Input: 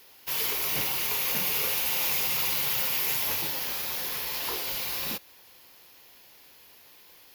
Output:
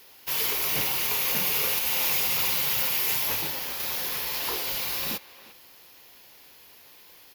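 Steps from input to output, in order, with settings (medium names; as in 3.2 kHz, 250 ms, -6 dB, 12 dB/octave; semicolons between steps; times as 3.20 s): speakerphone echo 350 ms, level -16 dB; 1.79–3.80 s: three bands expanded up and down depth 70%; trim +2 dB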